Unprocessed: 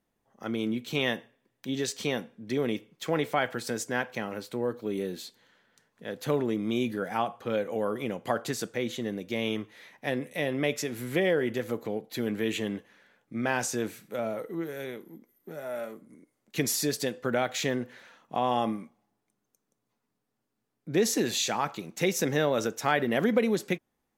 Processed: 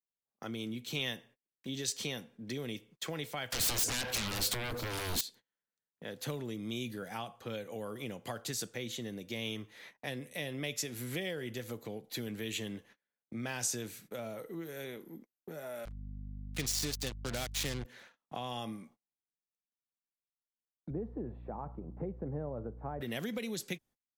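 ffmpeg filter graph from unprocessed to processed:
ffmpeg -i in.wav -filter_complex "[0:a]asettb=1/sr,asplit=3[link_01][link_02][link_03];[link_01]atrim=end=3.524[link_04];[link_02]atrim=start=3.52:end=5.21,asetpts=PTS-STARTPTS,afade=type=in:duration=0.004:curve=qsin,afade=type=out:start_time=1.686:duration=0.004:curve=qsin,acompressor=threshold=-35dB:ratio=8:attack=3.2:release=140:knee=1:detection=peak,aeval=exprs='0.0531*sin(PI/2*7.94*val(0)/0.0531)':channel_layout=same[link_05];[link_03]atrim=start=5.206[link_06];[link_04][link_05]acrossfade=duration=0.004:curve1=hsin:curve2=qsin[link_07];[link_07][link_06]acrossfade=duration=0.004:curve1=qsin:curve2=hsin,asettb=1/sr,asplit=3[link_08][link_09][link_10];[link_08]atrim=end=15.854[link_11];[link_09]atrim=start=15.85:end=17.85,asetpts=PTS-STARTPTS,afade=type=in:duration=0.004:curve=qsin,afade=type=out:start_time=1.996:duration=0.004:curve=qsin,lowpass=6700,acrusher=bits=4:mix=0:aa=0.5,aeval=exprs='val(0)+0.00794*(sin(2*PI*50*n/s)+sin(2*PI*2*50*n/s)/2+sin(2*PI*3*50*n/s)/3+sin(2*PI*4*50*n/s)/4+sin(2*PI*5*50*n/s)/5)':channel_layout=same[link_12];[link_10]atrim=start=17.846[link_13];[link_11][link_12]acrossfade=duration=0.004:curve1=hsin:curve2=qsin[link_14];[link_14][link_13]acrossfade=duration=0.004:curve1=qsin:curve2=hsin,asettb=1/sr,asplit=3[link_15][link_16][link_17];[link_15]atrim=end=20.904[link_18];[link_16]atrim=start=20.9:end=23.01,asetpts=PTS-STARTPTS,afade=type=in:duration=0.004:curve=qsin,afade=type=out:start_time=2.106:duration=0.004:curve=qsin,lowpass=frequency=1000:width=0.5412,lowpass=frequency=1000:width=1.3066,aemphasis=mode=reproduction:type=75kf,aeval=exprs='val(0)+0.00501*(sin(2*PI*60*n/s)+sin(2*PI*2*60*n/s)/2+sin(2*PI*3*60*n/s)/3+sin(2*PI*4*60*n/s)/4+sin(2*PI*5*60*n/s)/5)':channel_layout=same[link_19];[link_17]atrim=start=23.006[link_20];[link_18][link_19]acrossfade=duration=0.004:curve1=hsin:curve2=qsin[link_21];[link_21][link_20]acrossfade=duration=0.004:curve1=qsin:curve2=hsin,agate=range=-32dB:threshold=-51dB:ratio=16:detection=peak,acrossover=split=120|3000[link_22][link_23][link_24];[link_23]acompressor=threshold=-43dB:ratio=3[link_25];[link_22][link_25][link_24]amix=inputs=3:normalize=0" out.wav

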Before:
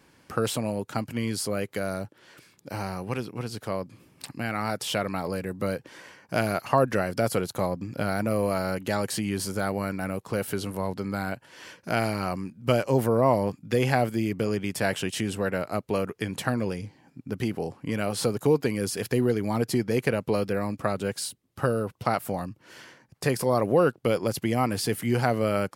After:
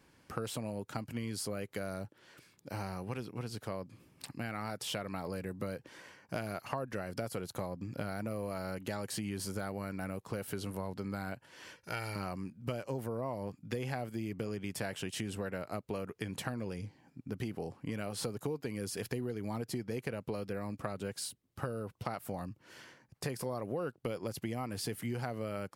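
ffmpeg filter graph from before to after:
ffmpeg -i in.wav -filter_complex "[0:a]asettb=1/sr,asplit=3[link_01][link_02][link_03];[link_01]atrim=end=11.764[link_04];[link_02]atrim=start=11.76:end=12.16,asetpts=PTS-STARTPTS,afade=type=in:duration=0.004:curve=qsin,afade=type=out:start_time=0.396:duration=0.004:curve=qsin,equalizer=frequency=330:width=0.37:gain=-7.5,aecho=1:1:2.2:0.55,atrim=end_sample=17640[link_05];[link_03]atrim=start=12.156[link_06];[link_04][link_05]acrossfade=duration=0.004:curve1=hsin:curve2=qsin[link_07];[link_07][link_06]acrossfade=duration=0.004:curve1=qsin:curve2=hsin,lowshelf=frequency=79:gain=6,acompressor=threshold=-27dB:ratio=6,volume=-6.5dB" out.wav

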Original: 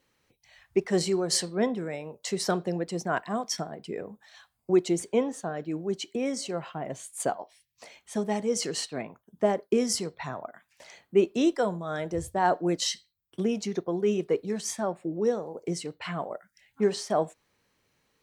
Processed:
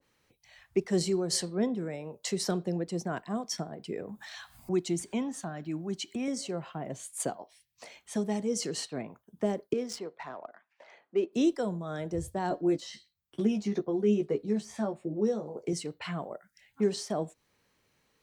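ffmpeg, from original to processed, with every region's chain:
ffmpeg -i in.wav -filter_complex "[0:a]asettb=1/sr,asplit=3[link_01][link_02][link_03];[link_01]atrim=end=4.094[link_04];[link_02]atrim=start=4.09:end=6.28,asetpts=PTS-STARTPTS,afade=type=in:duration=0.004:curve=qsin,afade=type=out:start_time=2.186:duration=0.004:curve=qsin,acompressor=mode=upward:threshold=-33dB:ratio=2.5:attack=3.2:release=140:knee=2.83:detection=peak,equalizer=frequency=470:width_type=o:width=0.49:gain=-14[link_05];[link_03]atrim=start=6.276[link_06];[link_04][link_05]acrossfade=duration=0.004:curve1=hsin:curve2=qsin[link_07];[link_07][link_06]acrossfade=duration=0.004:curve1=qsin:curve2=hsin,asettb=1/sr,asplit=3[link_08][link_09][link_10];[link_08]atrim=end=9.734[link_11];[link_09]atrim=start=9.73:end=11.33,asetpts=PTS-STARTPTS,afade=type=in:duration=0.004:curve=qsin,afade=type=out:start_time=1.596:duration=0.004:curve=qsin,highpass=390,highshelf=frequency=2600:gain=-5.5,adynamicsmooth=sensitivity=5.5:basefreq=2700[link_12];[link_10]atrim=start=11.326[link_13];[link_11][link_12]acrossfade=duration=0.004:curve1=hsin:curve2=qsin[link_14];[link_14][link_13]acrossfade=duration=0.004:curve1=qsin:curve2=hsin,asettb=1/sr,asplit=3[link_15][link_16][link_17];[link_15]atrim=end=12.494[link_18];[link_16]atrim=start=12.49:end=15.73,asetpts=PTS-STARTPTS,afade=type=in:duration=0.004:curve=qsin,afade=type=out:start_time=3.236:duration=0.004:curve=qsin,deesser=1,highshelf=frequency=8900:gain=-6.5,asplit=2[link_19][link_20];[link_20]adelay=14,volume=-4dB[link_21];[link_19][link_21]amix=inputs=2:normalize=0,atrim=end_sample=142884[link_22];[link_17]atrim=start=15.726[link_23];[link_18][link_22]acrossfade=duration=0.004:curve1=hsin:curve2=qsin[link_24];[link_24][link_23]acrossfade=duration=0.004:curve1=qsin:curve2=hsin,acrossover=split=390|3000[link_25][link_26][link_27];[link_26]acompressor=threshold=-42dB:ratio=2[link_28];[link_25][link_28][link_27]amix=inputs=3:normalize=0,adynamicequalizer=threshold=0.00501:dfrequency=1700:dqfactor=0.7:tfrequency=1700:tqfactor=0.7:attack=5:release=100:ratio=0.375:range=2.5:mode=cutabove:tftype=highshelf" out.wav

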